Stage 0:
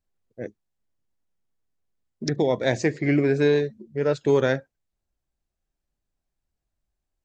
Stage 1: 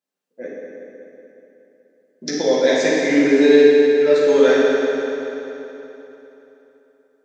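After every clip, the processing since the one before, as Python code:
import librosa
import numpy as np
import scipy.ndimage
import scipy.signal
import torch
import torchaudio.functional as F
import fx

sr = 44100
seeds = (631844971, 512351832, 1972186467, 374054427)

y = scipy.signal.sosfilt(scipy.signal.butter(4, 240.0, 'highpass', fs=sr, output='sos'), x)
y = fx.dynamic_eq(y, sr, hz=4200.0, q=0.87, threshold_db=-43.0, ratio=4.0, max_db=5)
y = fx.rev_fdn(y, sr, rt60_s=3.4, lf_ratio=1.0, hf_ratio=0.8, size_ms=34.0, drr_db=-8.5)
y = y * librosa.db_to_amplitude(-2.5)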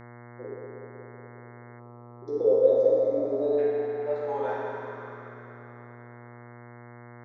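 y = fx.filter_sweep_bandpass(x, sr, from_hz=390.0, to_hz=1100.0, start_s=2.03, end_s=5.26, q=7.2)
y = fx.dmg_buzz(y, sr, base_hz=120.0, harmonics=18, level_db=-48.0, tilt_db=-4, odd_only=False)
y = fx.spec_box(y, sr, start_s=1.79, length_s=1.79, low_hz=1400.0, high_hz=3400.0, gain_db=-16)
y = y * librosa.db_to_amplitude(1.5)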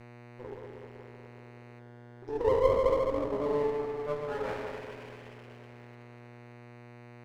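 y = fx.lower_of_two(x, sr, delay_ms=0.38)
y = y * librosa.db_to_amplitude(-3.5)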